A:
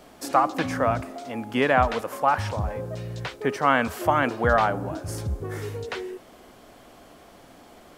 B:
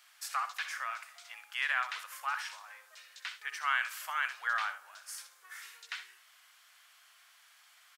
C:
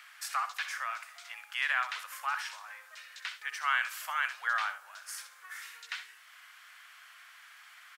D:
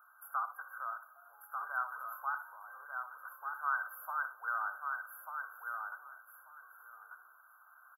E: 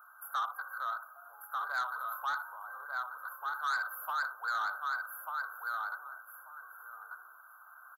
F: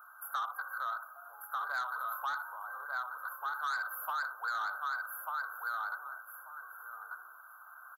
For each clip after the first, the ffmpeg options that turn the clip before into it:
-filter_complex "[0:a]highpass=f=1400:w=0.5412,highpass=f=1400:w=1.3066,asplit=2[s0][s1];[s1]aecho=0:1:63|78:0.266|0.141[s2];[s0][s2]amix=inputs=2:normalize=0,volume=0.596"
-filter_complex "[0:a]acrossover=split=1400|2000|7900[s0][s1][s2][s3];[s1]acompressor=mode=upward:threshold=0.00562:ratio=2.5[s4];[s0][s4][s2][s3]amix=inputs=4:normalize=0,highpass=f=410:w=0.5412,highpass=f=410:w=1.3066,volume=1.19"
-filter_complex "[0:a]afftfilt=real='re*(1-between(b*sr/4096,1600,11000))':imag='im*(1-between(b*sr/4096,1600,11000))':win_size=4096:overlap=0.75,asplit=2[s0][s1];[s1]aecho=0:1:1191|2382|3573:0.562|0.0956|0.0163[s2];[s0][s2]amix=inputs=2:normalize=0,volume=0.708"
-af "asoftclip=type=tanh:threshold=0.02,volume=2"
-af "acompressor=threshold=0.0178:ratio=4,volume=1.26"

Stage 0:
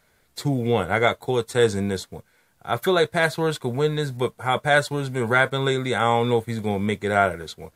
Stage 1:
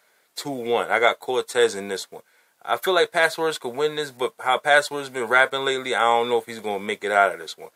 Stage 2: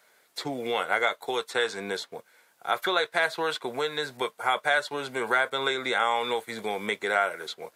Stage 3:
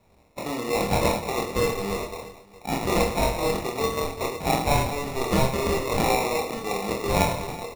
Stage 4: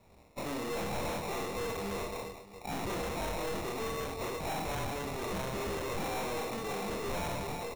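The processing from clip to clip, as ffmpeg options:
-af "highpass=440,volume=1.33"
-filter_complex "[0:a]acrossover=split=950|4900[s0][s1][s2];[s0]acompressor=threshold=0.0316:ratio=4[s3];[s1]acompressor=threshold=0.0708:ratio=4[s4];[s2]acompressor=threshold=0.00355:ratio=4[s5];[s3][s4][s5]amix=inputs=3:normalize=0"
-filter_complex "[0:a]asplit=2[s0][s1];[s1]aecho=0:1:40|104|206.4|370.2|632.4:0.631|0.398|0.251|0.158|0.1[s2];[s0][s2]amix=inputs=2:normalize=0,acrusher=samples=28:mix=1:aa=0.000001,asplit=2[s3][s4];[s4]adelay=25,volume=0.562[s5];[s3][s5]amix=inputs=2:normalize=0"
-af "aeval=exprs='(tanh(50.1*val(0)+0.3)-tanh(0.3))/50.1':c=same"

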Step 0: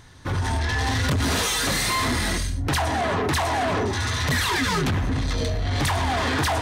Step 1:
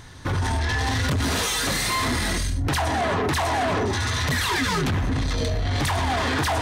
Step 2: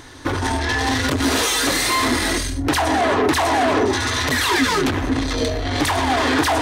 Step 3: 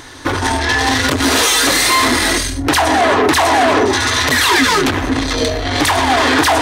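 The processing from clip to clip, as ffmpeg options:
-af "alimiter=limit=0.0708:level=0:latency=1:release=30,volume=1.78"
-af "lowshelf=f=230:t=q:w=3:g=-6,volume=1.78"
-af "lowshelf=f=430:g=-5,volume=2.24"

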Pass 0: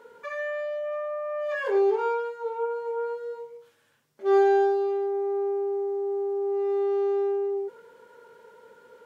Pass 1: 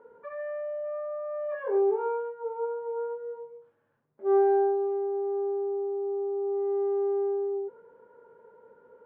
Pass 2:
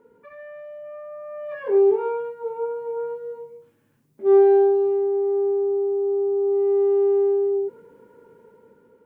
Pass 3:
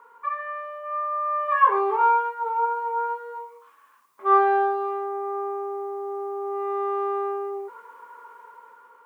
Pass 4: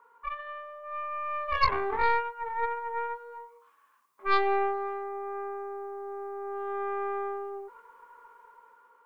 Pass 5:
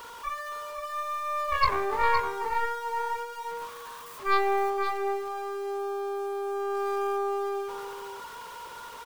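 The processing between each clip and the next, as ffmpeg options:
-af "lowpass=1100,aemphasis=mode=reproduction:type=50fm,volume=0.75"
-af "lowshelf=f=400:t=q:w=1.5:g=9,dynaudnorm=f=520:g=5:m=2.37,aexciter=amount=2.7:drive=7.1:freq=2100,volume=0.668"
-af "highpass=f=1100:t=q:w=12,volume=2.11"
-af "aeval=exprs='0.473*(cos(1*acos(clip(val(0)/0.473,-1,1)))-cos(1*PI/2))+0.237*(cos(2*acos(clip(val(0)/0.473,-1,1)))-cos(2*PI/2))+0.211*(cos(4*acos(clip(val(0)/0.473,-1,1)))-cos(4*PI/2))':c=same,volume=0.398"
-af "aeval=exprs='val(0)+0.5*0.0112*sgn(val(0))':c=same,aecho=1:1:514:0.447"

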